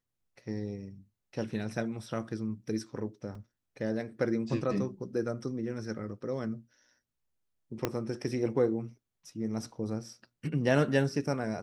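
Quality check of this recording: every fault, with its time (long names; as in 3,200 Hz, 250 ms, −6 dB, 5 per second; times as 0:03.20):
0:03.35: drop-out 3.2 ms
0:07.85: click −14 dBFS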